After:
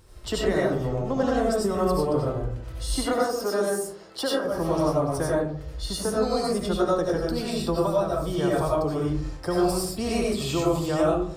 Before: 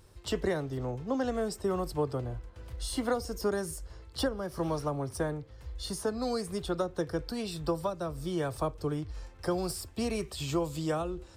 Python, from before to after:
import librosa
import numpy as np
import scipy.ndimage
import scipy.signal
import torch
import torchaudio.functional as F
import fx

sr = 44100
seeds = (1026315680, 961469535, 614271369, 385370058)

y = fx.highpass(x, sr, hz=290.0, slope=12, at=(3.03, 4.45))
y = fx.rev_freeverb(y, sr, rt60_s=0.61, hf_ratio=0.35, predelay_ms=50, drr_db=-4.5)
y = y * 10.0 ** (2.5 / 20.0)